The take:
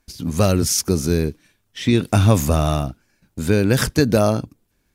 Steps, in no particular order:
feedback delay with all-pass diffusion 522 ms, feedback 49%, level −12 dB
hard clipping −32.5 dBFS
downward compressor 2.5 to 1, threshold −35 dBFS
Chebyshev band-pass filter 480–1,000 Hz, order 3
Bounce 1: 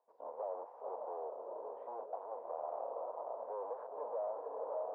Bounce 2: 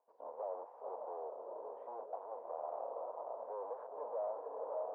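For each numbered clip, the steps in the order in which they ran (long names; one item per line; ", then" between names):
feedback delay with all-pass diffusion, then hard clipping, then Chebyshev band-pass filter, then downward compressor
feedback delay with all-pass diffusion, then hard clipping, then downward compressor, then Chebyshev band-pass filter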